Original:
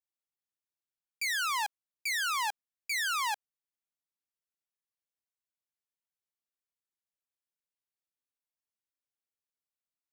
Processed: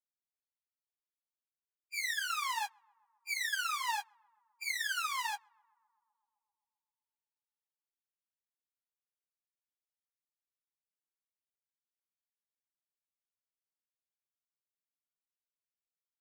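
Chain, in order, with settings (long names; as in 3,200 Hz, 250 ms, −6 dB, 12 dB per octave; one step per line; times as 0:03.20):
Chebyshev high-pass filter 810 Hz, order 4
time stretch by phase vocoder 1.6×
on a send: tape delay 129 ms, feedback 88%, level −21 dB, low-pass 1,400 Hz
on the sum: expander for the loud parts 1.5 to 1, over −50 dBFS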